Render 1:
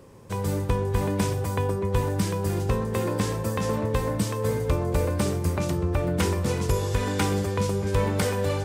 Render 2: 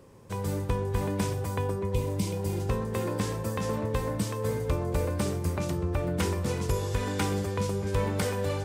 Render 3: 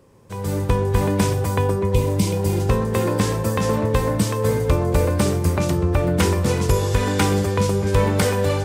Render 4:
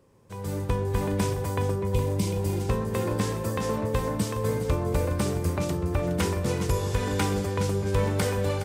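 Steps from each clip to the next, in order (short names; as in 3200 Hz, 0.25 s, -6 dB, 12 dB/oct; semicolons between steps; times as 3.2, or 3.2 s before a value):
spectral repair 1.93–2.57, 660–2000 Hz both; gain -4 dB
AGC gain up to 10 dB
echo 0.416 s -12 dB; gain -7.5 dB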